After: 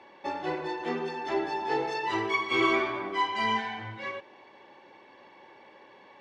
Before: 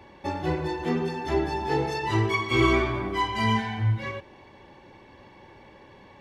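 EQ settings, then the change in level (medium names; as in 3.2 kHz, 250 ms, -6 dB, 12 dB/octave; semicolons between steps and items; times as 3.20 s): Bessel high-pass 440 Hz, order 2; distance through air 83 m; 0.0 dB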